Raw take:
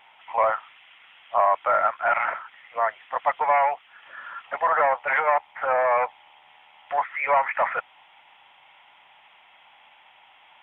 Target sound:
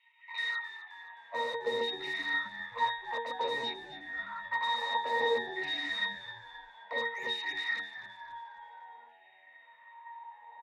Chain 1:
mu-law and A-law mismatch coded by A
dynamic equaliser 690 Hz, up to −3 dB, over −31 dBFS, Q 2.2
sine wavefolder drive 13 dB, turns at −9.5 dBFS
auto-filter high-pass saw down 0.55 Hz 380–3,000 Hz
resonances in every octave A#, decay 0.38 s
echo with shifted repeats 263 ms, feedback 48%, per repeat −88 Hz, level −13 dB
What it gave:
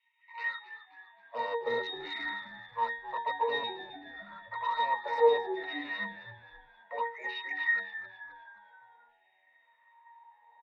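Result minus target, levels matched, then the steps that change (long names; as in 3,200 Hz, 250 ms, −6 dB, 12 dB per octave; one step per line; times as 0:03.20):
sine wavefolder: distortion −18 dB
change: sine wavefolder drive 22 dB, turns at −9.5 dBFS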